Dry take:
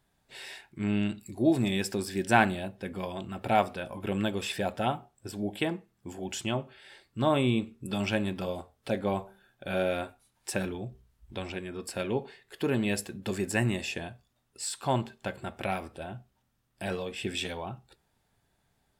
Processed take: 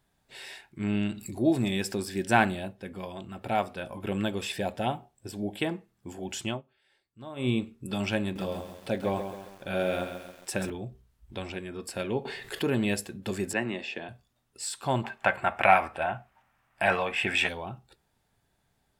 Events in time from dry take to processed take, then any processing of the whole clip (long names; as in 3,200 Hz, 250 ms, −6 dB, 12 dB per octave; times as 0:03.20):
0:00.95–0:01.93: upward compression, threshold −30 dBFS
0:02.73–0:03.77: clip gain −3 dB
0:04.46–0:05.48: parametric band 1,300 Hz −6.5 dB 0.37 octaves
0:06.49–0:07.49: duck −17 dB, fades 0.13 s
0:08.22–0:10.70: feedback echo at a low word length 135 ms, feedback 55%, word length 8 bits, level −8 dB
0:12.25–0:12.94: envelope flattener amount 50%
0:13.53–0:14.09: three-way crossover with the lows and the highs turned down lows −18 dB, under 200 Hz, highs −21 dB, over 4,300 Hz
0:15.04–0:17.49: flat-topped bell 1,300 Hz +14.5 dB 2.4 octaves